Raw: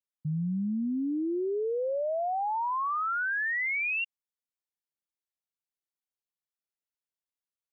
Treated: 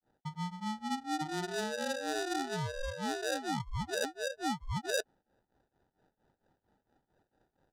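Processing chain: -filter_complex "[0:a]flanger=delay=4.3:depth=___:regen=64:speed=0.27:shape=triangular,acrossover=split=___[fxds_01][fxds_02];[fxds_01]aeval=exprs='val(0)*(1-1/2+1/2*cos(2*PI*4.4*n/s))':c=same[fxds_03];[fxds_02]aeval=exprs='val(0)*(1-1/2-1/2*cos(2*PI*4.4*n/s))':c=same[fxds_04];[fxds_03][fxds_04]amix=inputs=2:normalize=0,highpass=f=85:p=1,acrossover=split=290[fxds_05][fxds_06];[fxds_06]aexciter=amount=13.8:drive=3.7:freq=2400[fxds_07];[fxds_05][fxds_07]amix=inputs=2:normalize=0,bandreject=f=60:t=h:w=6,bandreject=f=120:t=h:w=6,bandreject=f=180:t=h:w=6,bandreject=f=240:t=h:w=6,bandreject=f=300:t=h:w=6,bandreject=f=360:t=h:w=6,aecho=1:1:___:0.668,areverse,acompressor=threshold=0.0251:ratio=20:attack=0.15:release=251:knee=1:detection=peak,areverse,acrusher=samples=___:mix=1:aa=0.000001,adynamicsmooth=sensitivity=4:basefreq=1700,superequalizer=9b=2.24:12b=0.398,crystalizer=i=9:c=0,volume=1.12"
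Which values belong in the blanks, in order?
9.2, 530, 959, 41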